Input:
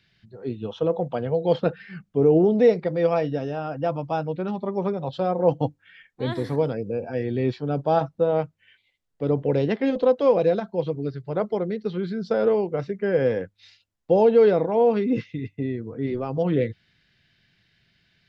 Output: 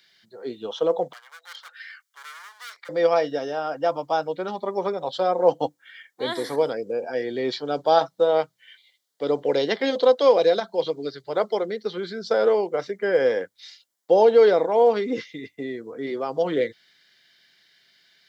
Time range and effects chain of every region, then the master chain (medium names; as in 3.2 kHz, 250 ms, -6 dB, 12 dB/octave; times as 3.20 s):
1.13–2.89 s: hard clipper -23.5 dBFS + compression 3:1, threshold -37 dBFS + high-pass 1.2 kHz 24 dB/octave
7.51–11.66 s: peaking EQ 4 kHz +6 dB 1 oct + hum notches 60/120/180 Hz
whole clip: high-pass 420 Hz 12 dB/octave; treble shelf 4.2 kHz +11.5 dB; band-stop 2.6 kHz, Q 5.3; trim +3.5 dB